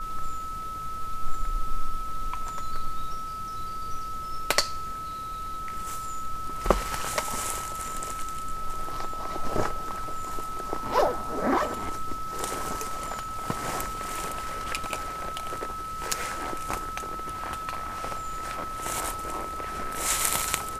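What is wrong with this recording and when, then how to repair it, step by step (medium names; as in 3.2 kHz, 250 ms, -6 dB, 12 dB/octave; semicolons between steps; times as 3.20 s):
whine 1.3 kHz -33 dBFS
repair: band-stop 1.3 kHz, Q 30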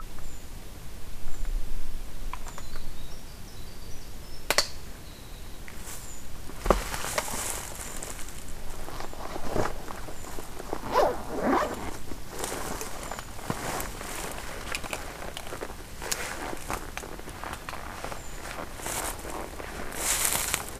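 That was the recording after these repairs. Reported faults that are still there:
nothing left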